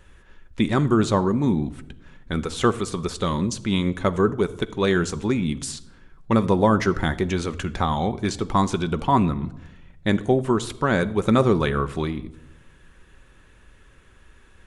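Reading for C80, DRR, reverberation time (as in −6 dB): 20.5 dB, 10.5 dB, 0.95 s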